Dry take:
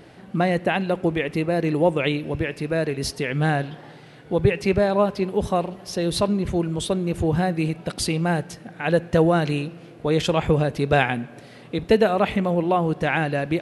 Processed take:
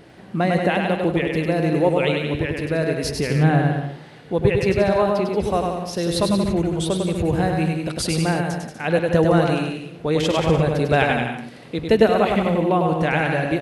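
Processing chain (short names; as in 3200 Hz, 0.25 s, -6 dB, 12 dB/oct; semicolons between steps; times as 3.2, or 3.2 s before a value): 3.09–3.74 tilt -2 dB/oct; bouncing-ball echo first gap 0.1 s, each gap 0.8×, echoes 5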